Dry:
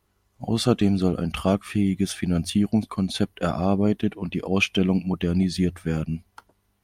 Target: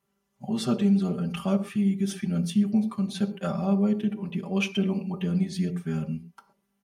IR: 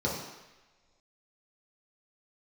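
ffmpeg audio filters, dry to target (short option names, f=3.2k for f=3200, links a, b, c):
-filter_complex "[0:a]highpass=120,aecho=1:1:5.1:0.93,asplit=2[a][b];[1:a]atrim=start_sample=2205,atrim=end_sample=6174[c];[b][c]afir=irnorm=-1:irlink=0,volume=-17dB[d];[a][d]amix=inputs=2:normalize=0,volume=-8.5dB"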